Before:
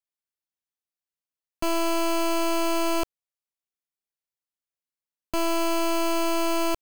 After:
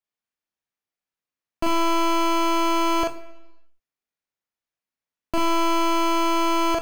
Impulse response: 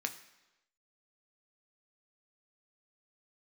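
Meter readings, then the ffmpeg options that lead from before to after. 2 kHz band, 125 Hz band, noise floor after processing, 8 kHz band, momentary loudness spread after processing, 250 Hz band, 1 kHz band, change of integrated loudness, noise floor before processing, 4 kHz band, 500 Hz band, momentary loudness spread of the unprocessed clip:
+3.5 dB, n/a, under -85 dBFS, -0.5 dB, 4 LU, +3.0 dB, +7.0 dB, +3.5 dB, under -85 dBFS, +3.5 dB, +0.5 dB, 5 LU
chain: -filter_complex "[0:a]highshelf=f=4.4k:g=-10.5,asplit=2[a][b];[1:a]atrim=start_sample=2205,adelay=40[c];[b][c]afir=irnorm=-1:irlink=0,volume=-1.5dB[d];[a][d]amix=inputs=2:normalize=0,volume=3.5dB"

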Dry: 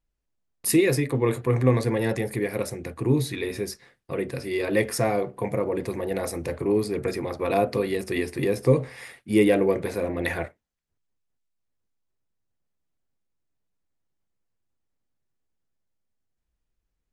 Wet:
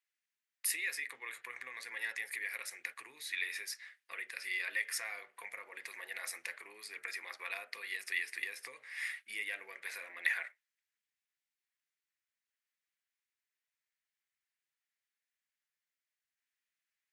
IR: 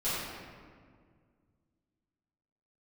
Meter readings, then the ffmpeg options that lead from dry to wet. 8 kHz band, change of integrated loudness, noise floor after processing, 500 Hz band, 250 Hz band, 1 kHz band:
-8.0 dB, -14.5 dB, under -85 dBFS, -34.0 dB, under -40 dB, -19.5 dB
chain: -af "acompressor=threshold=-31dB:ratio=3,highpass=f=1.9k:t=q:w=2.5,volume=-2.5dB"

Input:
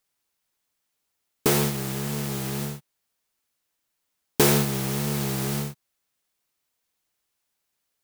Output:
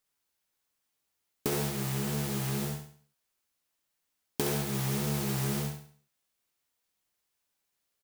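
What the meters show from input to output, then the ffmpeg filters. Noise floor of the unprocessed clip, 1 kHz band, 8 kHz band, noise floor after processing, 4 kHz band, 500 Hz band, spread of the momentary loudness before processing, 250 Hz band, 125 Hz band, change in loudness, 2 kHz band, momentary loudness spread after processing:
-79 dBFS, -7.5 dB, -8.0 dB, -81 dBFS, -7.5 dB, -8.0 dB, 13 LU, -6.5 dB, -4.5 dB, -7.0 dB, -8.0 dB, 7 LU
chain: -filter_complex "[0:a]acompressor=threshold=-24dB:ratio=12,asplit=2[a][b];[b]adelay=14,volume=-11dB[c];[a][c]amix=inputs=2:normalize=0,asplit=2[d][e];[e]aecho=0:1:68|136|204|272|340:0.447|0.174|0.0679|0.0265|0.0103[f];[d][f]amix=inputs=2:normalize=0,volume=-4dB"

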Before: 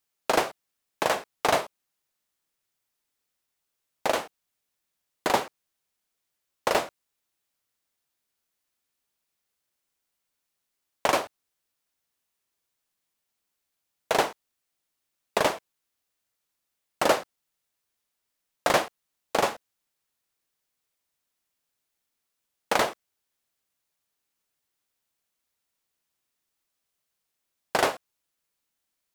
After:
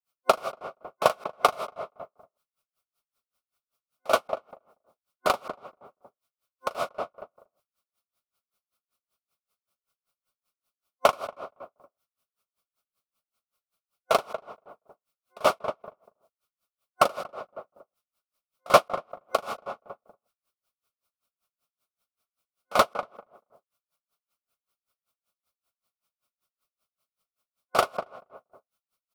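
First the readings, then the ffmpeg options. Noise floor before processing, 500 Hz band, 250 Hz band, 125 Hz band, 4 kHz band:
-82 dBFS, +1.0 dB, -5.5 dB, -2.0 dB, -2.5 dB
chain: -filter_complex "[0:a]superequalizer=6b=0.562:8b=1.78:10b=2.51:11b=0.355:15b=0.631,asplit=2[a][b];[b]adelay=236,lowpass=f=1.2k:p=1,volume=-9dB,asplit=2[c][d];[d]adelay=236,lowpass=f=1.2k:p=1,volume=0.27,asplit=2[e][f];[f]adelay=236,lowpass=f=1.2k:p=1,volume=0.27[g];[a][c][e][g]amix=inputs=4:normalize=0,aeval=exprs='val(0)*pow(10,-31*(0.5-0.5*cos(2*PI*5.2*n/s))/20)':c=same,volume=3.5dB"

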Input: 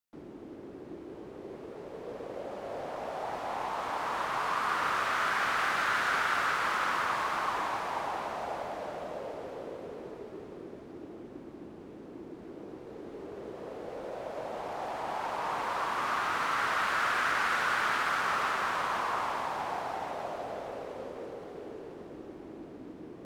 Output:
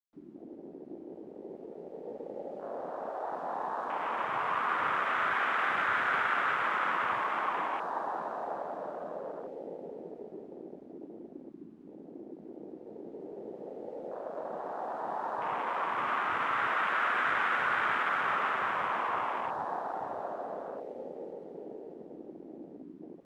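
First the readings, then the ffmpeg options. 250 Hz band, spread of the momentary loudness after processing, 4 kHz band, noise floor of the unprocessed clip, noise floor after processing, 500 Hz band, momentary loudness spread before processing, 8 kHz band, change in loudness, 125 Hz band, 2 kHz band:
-1.0 dB, 19 LU, -6.0 dB, -47 dBFS, -50 dBFS, -0.5 dB, 18 LU, under -15 dB, -0.5 dB, -4.5 dB, -0.5 dB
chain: -af "afwtdn=0.0158"

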